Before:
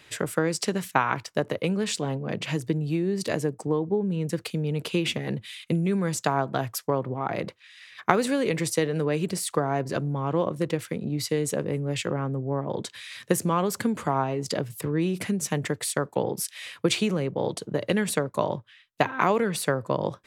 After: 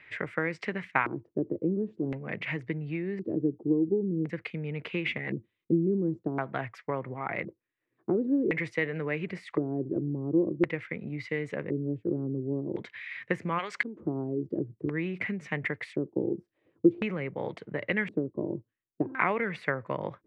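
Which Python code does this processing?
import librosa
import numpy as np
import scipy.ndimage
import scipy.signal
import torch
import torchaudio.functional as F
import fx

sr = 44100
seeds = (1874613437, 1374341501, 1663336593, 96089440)

y = fx.filter_lfo_lowpass(x, sr, shape='square', hz=0.47, low_hz=340.0, high_hz=2100.0, q=5.1)
y = fx.weighting(y, sr, curve='ITU-R 468', at=(13.58, 13.99), fade=0.02)
y = F.gain(torch.from_numpy(y), -7.5).numpy()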